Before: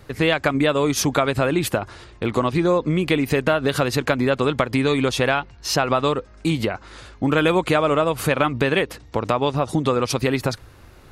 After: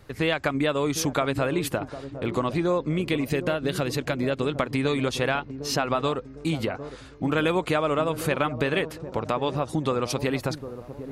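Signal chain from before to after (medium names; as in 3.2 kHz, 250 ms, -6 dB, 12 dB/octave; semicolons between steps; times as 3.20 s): 3.02–4.58 s: peaking EQ 1.1 kHz -5 dB 1.3 oct; feedback echo behind a low-pass 756 ms, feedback 41%, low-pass 700 Hz, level -10.5 dB; trim -5.5 dB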